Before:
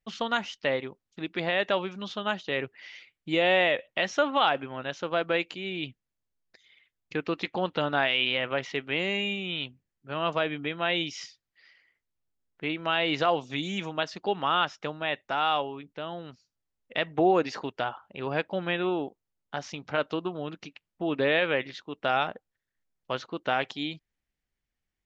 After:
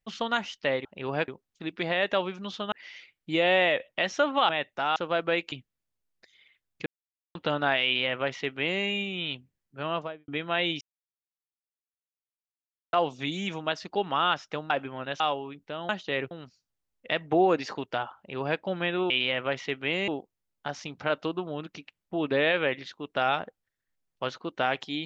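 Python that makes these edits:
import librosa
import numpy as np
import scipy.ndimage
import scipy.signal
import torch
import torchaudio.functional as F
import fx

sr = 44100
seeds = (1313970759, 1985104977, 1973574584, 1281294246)

y = fx.studio_fade_out(x, sr, start_s=10.14, length_s=0.45)
y = fx.edit(y, sr, fx.move(start_s=2.29, length_s=0.42, to_s=16.17),
    fx.swap(start_s=4.48, length_s=0.5, other_s=15.01, other_length_s=0.47),
    fx.cut(start_s=5.54, length_s=0.29),
    fx.silence(start_s=7.17, length_s=0.49),
    fx.duplicate(start_s=8.16, length_s=0.98, to_s=18.96),
    fx.silence(start_s=11.12, length_s=2.12),
    fx.duplicate(start_s=18.03, length_s=0.43, to_s=0.85), tone=tone)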